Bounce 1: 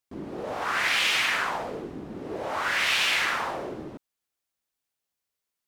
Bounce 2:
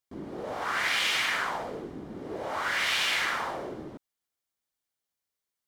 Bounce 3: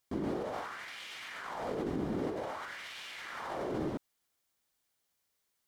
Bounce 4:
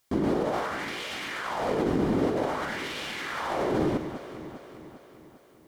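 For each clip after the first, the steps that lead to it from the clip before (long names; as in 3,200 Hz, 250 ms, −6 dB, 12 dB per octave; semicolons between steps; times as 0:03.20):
notch filter 2,600 Hz, Q 13; level −2.5 dB
compressor whose output falls as the input rises −40 dBFS, ratio −1
delay that swaps between a low-pass and a high-pass 200 ms, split 1,100 Hz, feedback 73%, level −9 dB; level +9 dB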